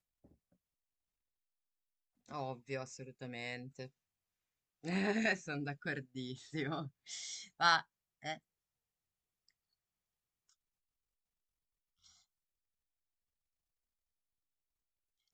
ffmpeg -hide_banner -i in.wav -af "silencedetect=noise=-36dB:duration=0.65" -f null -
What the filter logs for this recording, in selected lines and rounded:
silence_start: 0.00
silence_end: 2.32 | silence_duration: 2.32
silence_start: 3.83
silence_end: 4.86 | silence_duration: 1.03
silence_start: 8.34
silence_end: 15.34 | silence_duration: 7.00